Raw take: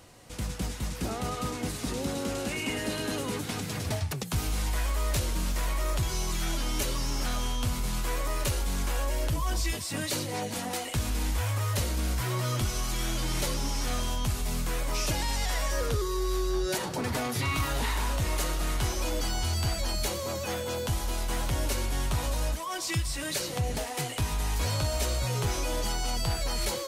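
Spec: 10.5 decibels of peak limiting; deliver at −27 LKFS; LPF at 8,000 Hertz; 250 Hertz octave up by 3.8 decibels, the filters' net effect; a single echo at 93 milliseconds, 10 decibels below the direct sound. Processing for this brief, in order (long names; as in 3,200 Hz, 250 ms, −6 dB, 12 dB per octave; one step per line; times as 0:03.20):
low-pass filter 8,000 Hz
parametric band 250 Hz +5 dB
brickwall limiter −27.5 dBFS
single-tap delay 93 ms −10 dB
level +8.5 dB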